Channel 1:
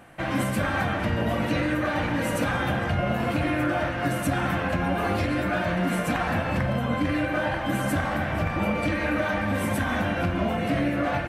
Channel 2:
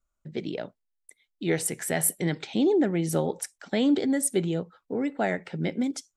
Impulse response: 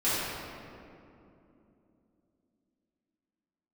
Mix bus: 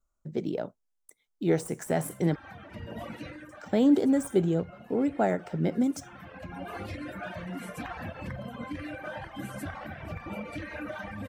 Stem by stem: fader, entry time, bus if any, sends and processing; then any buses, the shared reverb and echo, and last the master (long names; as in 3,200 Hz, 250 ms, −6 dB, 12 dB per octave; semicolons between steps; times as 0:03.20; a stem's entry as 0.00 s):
−10.0 dB, 1.70 s, no send, reverb reduction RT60 1.6 s; automatic ducking −11 dB, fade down 0.55 s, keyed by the second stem
+1.5 dB, 0.00 s, muted 0:02.36–0:03.49, no send, running median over 3 samples; de-essing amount 70%; flat-topped bell 2,800 Hz −9.5 dB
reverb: not used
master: no processing